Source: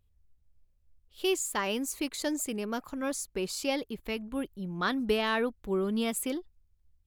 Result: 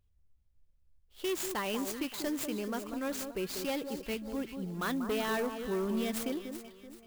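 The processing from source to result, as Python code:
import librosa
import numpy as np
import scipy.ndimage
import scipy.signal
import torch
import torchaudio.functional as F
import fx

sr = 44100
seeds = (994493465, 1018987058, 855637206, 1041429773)

y = np.clip(10.0 ** (26.5 / 20.0) * x, -1.0, 1.0) / 10.0 ** (26.5 / 20.0)
y = fx.echo_alternate(y, sr, ms=191, hz=1300.0, feedback_pct=61, wet_db=-7)
y = fx.clock_jitter(y, sr, seeds[0], jitter_ms=0.026)
y = y * librosa.db_to_amplitude(-2.5)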